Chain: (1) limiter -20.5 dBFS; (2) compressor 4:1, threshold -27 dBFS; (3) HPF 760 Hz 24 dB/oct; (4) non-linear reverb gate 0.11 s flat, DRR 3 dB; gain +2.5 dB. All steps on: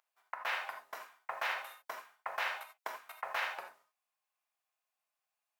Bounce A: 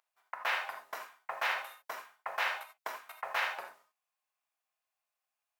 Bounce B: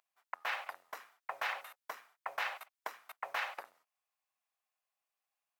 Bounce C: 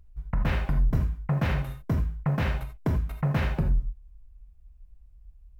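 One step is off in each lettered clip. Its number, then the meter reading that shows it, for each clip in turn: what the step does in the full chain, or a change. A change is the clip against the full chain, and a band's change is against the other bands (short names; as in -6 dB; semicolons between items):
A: 2, mean gain reduction 1.5 dB; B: 4, loudness change -1.5 LU; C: 3, 500 Hz band +10.5 dB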